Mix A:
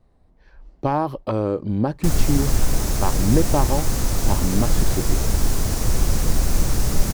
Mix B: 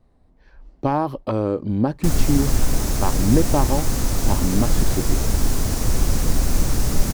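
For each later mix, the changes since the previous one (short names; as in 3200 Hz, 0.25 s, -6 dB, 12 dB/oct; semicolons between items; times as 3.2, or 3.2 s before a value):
master: add bell 260 Hz +4 dB 0.34 oct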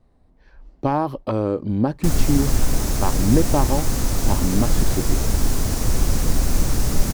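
none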